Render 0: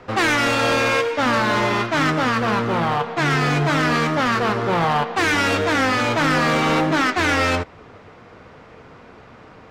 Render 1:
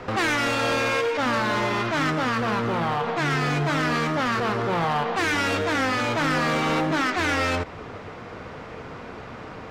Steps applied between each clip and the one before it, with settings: limiter -24.5 dBFS, peak gain reduction 11 dB; gain +6 dB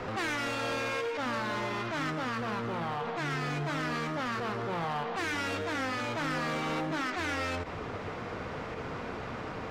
limiter -28 dBFS, peak gain reduction 9.5 dB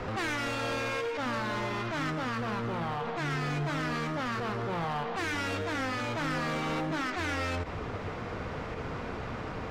low shelf 95 Hz +9 dB

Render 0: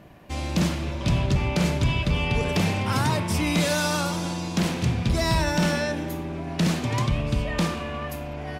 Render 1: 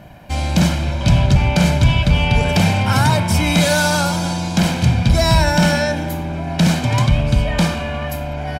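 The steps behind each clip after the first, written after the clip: comb 1.3 ms, depth 53%; gain +7 dB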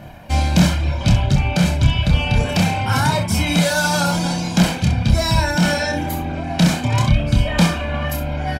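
vocal rider within 3 dB 0.5 s; reverb removal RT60 0.7 s; early reflections 28 ms -4.5 dB, 65 ms -9 dB; gain -1 dB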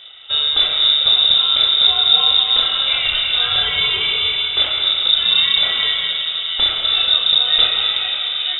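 plate-style reverb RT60 3.4 s, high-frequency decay 0.55×, pre-delay 0.115 s, DRR 1.5 dB; inverted band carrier 3700 Hz; gain -3 dB

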